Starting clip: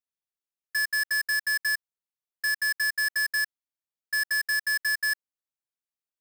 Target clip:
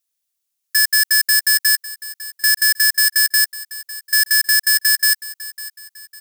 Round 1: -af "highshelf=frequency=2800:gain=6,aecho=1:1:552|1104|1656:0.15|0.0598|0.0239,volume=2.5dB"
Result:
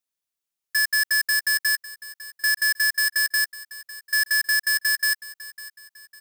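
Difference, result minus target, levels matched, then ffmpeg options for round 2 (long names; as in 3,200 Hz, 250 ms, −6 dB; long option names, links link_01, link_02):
2,000 Hz band +4.0 dB
-af "highshelf=frequency=2800:gain=17,aecho=1:1:552|1104|1656:0.15|0.0598|0.0239,volume=2.5dB"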